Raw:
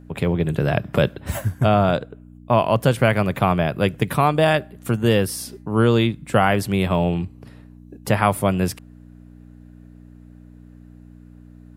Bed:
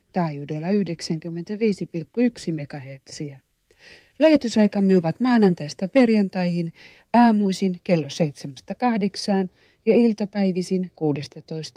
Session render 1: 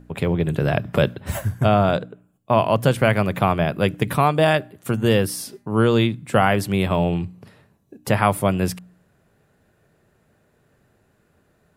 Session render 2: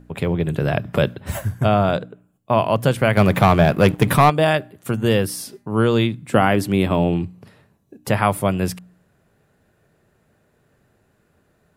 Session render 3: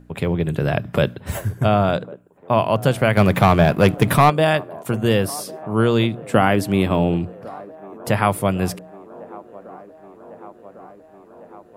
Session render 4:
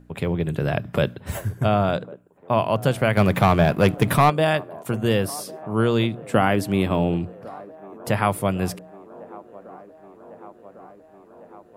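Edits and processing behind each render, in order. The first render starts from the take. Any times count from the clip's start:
de-hum 60 Hz, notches 5
3.17–4.3 sample leveller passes 2; 6.32–7.26 bell 290 Hz +7.5 dB
band-limited delay 1.102 s, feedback 73%, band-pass 570 Hz, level -18.5 dB
gain -3 dB

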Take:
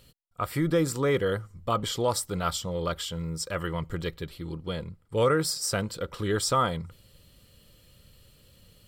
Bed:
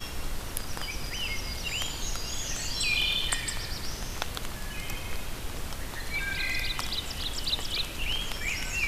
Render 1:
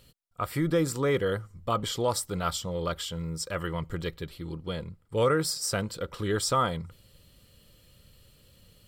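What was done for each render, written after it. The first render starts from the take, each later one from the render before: gain -1 dB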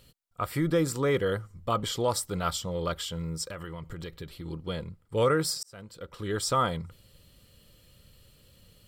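3.47–4.46 compressor 10:1, threshold -34 dBFS; 5.63–6.61 fade in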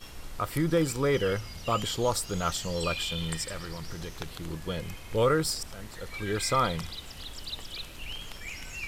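add bed -8.5 dB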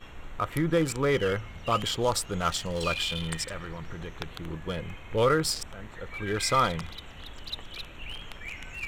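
Wiener smoothing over 9 samples; bell 2900 Hz +4.5 dB 2.9 oct

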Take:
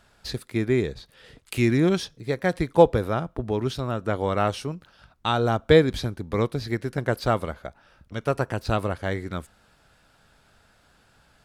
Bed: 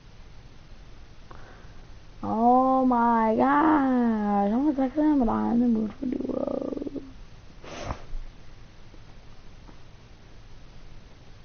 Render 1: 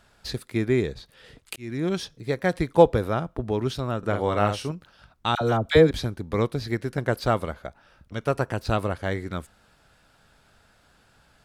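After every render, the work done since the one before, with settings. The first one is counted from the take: 1.56–2.13 fade in; 3.98–4.71 doubler 49 ms -7 dB; 5.35–5.91 dispersion lows, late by 59 ms, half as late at 1000 Hz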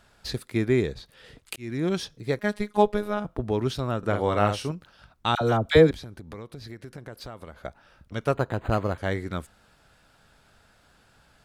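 2.39–3.25 robotiser 208 Hz; 5.91–7.62 compressor 5:1, threshold -38 dBFS; 8.34–8.98 decimation joined by straight lines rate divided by 8×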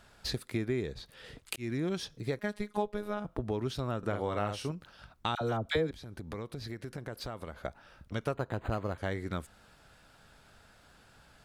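compressor 3:1, threshold -32 dBFS, peak gain reduction 15.5 dB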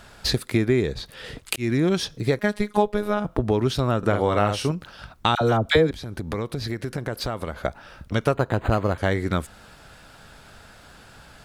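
gain +12 dB; limiter -3 dBFS, peak gain reduction 1 dB

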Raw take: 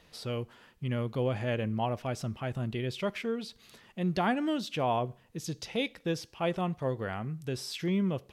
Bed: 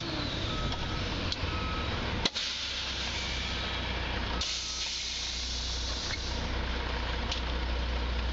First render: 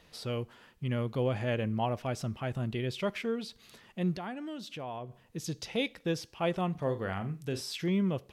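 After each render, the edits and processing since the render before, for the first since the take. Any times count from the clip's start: 4.16–5.23 compressor 2:1, threshold -45 dBFS; 6.71–7.61 flutter echo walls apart 7.1 m, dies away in 0.25 s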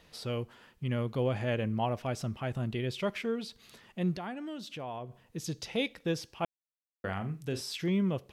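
6.45–7.04 mute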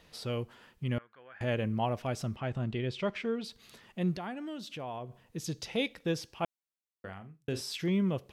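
0.98–1.41 band-pass 1600 Hz, Q 6.3; 2.36–3.44 air absorption 75 m; 6.44–7.48 fade out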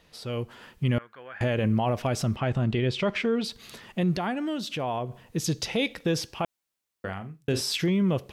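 AGC gain up to 10 dB; limiter -17 dBFS, peak gain reduction 8.5 dB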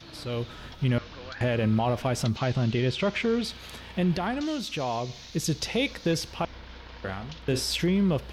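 add bed -11.5 dB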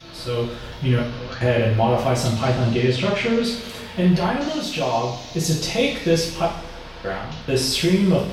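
two-slope reverb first 0.53 s, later 2.5 s, from -18 dB, DRR -6.5 dB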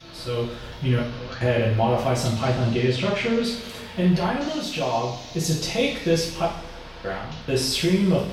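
gain -2.5 dB

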